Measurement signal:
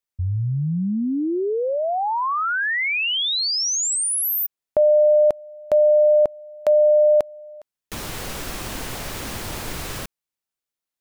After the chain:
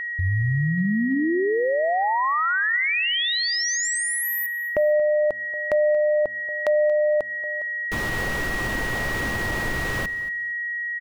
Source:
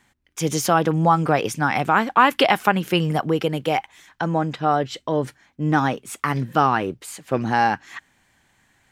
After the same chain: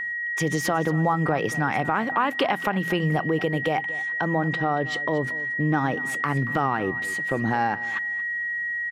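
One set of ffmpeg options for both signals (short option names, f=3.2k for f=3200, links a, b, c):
-af "aeval=exprs='val(0)+0.0355*sin(2*PI*1900*n/s)':c=same,highshelf=f=3.7k:g=-11,bandreject=f=84.22:t=h:w=4,bandreject=f=168.44:t=h:w=4,bandreject=f=252.66:t=h:w=4,acompressor=threshold=-24dB:ratio=3:attack=1.2:release=258:knee=1:detection=peak,aecho=1:1:230|460:0.141|0.0254,volume=4.5dB"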